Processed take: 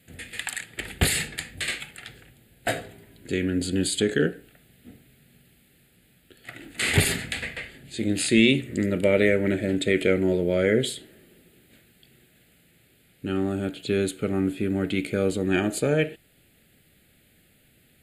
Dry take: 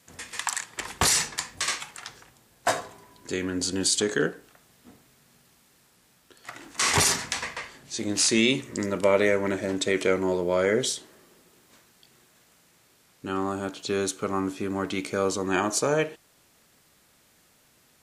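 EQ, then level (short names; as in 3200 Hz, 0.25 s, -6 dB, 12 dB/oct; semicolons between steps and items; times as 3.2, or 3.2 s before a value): low shelf 200 Hz +6.5 dB; fixed phaser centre 2500 Hz, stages 4; +3.0 dB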